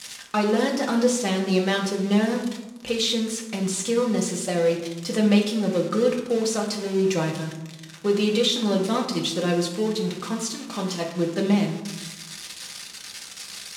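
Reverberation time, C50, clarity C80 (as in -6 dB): 1.1 s, 7.0 dB, 9.0 dB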